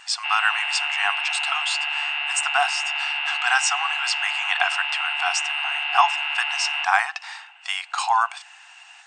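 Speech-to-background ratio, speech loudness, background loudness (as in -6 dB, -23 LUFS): -1.0 dB, -24.5 LUFS, -23.5 LUFS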